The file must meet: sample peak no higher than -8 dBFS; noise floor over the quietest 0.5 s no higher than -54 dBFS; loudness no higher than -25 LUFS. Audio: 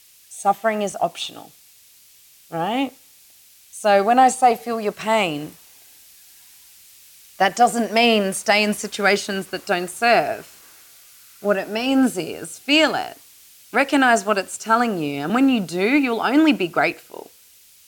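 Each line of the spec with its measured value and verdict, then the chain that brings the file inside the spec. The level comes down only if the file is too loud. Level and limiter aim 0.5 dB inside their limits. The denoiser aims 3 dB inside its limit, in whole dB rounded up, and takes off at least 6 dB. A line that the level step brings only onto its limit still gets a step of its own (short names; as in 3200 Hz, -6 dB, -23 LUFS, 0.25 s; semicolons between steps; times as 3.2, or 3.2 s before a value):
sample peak -5.0 dBFS: fail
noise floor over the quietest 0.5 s -51 dBFS: fail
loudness -19.5 LUFS: fail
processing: gain -6 dB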